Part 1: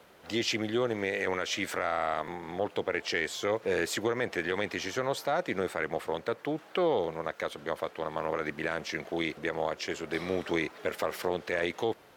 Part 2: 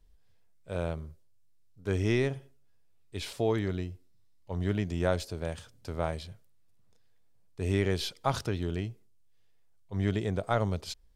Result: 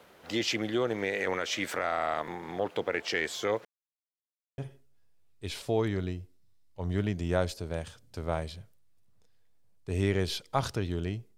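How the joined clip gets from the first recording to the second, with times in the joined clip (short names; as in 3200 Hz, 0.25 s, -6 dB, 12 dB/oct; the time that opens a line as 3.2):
part 1
3.65–4.58 mute
4.58 switch to part 2 from 2.29 s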